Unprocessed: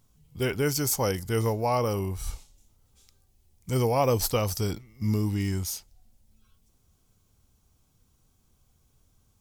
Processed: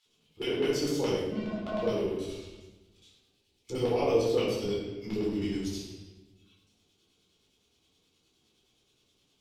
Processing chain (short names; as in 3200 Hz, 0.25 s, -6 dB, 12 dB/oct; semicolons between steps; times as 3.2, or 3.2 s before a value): 1.27–1.82 vocoder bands 8, square 213 Hz; LFO band-pass square 9.6 Hz 380–3300 Hz; reverb RT60 1.0 s, pre-delay 9 ms, DRR -7 dB; mismatched tape noise reduction encoder only; gain -4 dB